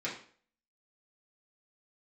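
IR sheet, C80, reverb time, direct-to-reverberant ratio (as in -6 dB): 10.5 dB, 0.50 s, -7.0 dB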